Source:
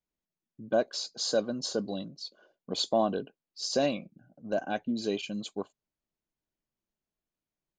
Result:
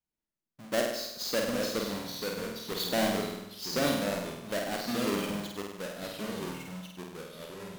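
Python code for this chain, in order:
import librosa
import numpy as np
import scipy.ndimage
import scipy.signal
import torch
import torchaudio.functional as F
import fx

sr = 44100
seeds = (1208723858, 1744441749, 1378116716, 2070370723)

y = fx.halfwave_hold(x, sr)
y = fx.echo_pitch(y, sr, ms=726, semitones=-2, count=3, db_per_echo=-6.0)
y = fx.room_flutter(y, sr, wall_m=8.5, rt60_s=0.85)
y = y * 10.0 ** (-7.5 / 20.0)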